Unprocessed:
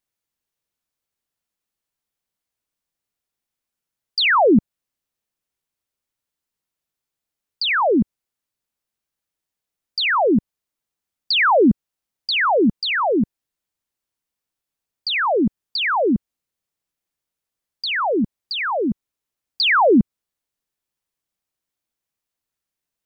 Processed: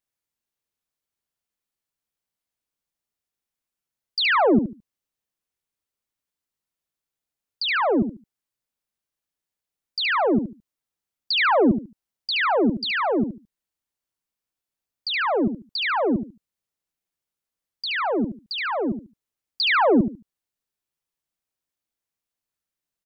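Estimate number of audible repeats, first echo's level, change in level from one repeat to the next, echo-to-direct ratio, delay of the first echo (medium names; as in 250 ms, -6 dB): 3, -8.5 dB, -13.0 dB, -8.5 dB, 72 ms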